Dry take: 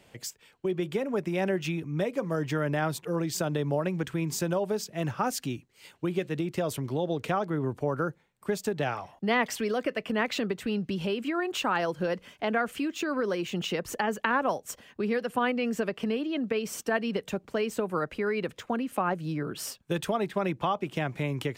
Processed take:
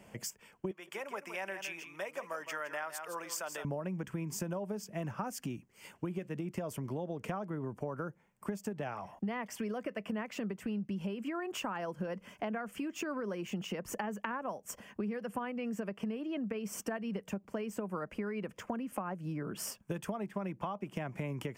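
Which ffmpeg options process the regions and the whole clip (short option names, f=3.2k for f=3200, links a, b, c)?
-filter_complex "[0:a]asettb=1/sr,asplit=3[a][b][c];[a]atrim=end=0.714[d];[b]atrim=start=0.71:end=3.65,asetpts=PTS-STARTPTS,afade=t=in:d=0.004:c=qsin,afade=t=out:st=2.936:d=0.004:c=qsin,highpass=1k,aecho=1:1:163:0.299,atrim=end_sample=129654[e];[c]atrim=start=3.646[f];[d][e]acrossfade=d=0.004:c1=hsin:c2=qsin[g];[g][f]acrossfade=d=0.004:c1=qsin:c2=hsin,equalizer=f=200:t=o:w=0.33:g=9,equalizer=f=630:t=o:w=0.33:g=3,equalizer=f=1k:t=o:w=0.33:g=4,equalizer=f=4k:t=o:w=0.33:g=-8,acompressor=threshold=-35dB:ratio=6,equalizer=f=3.8k:w=3.7:g=-8.5"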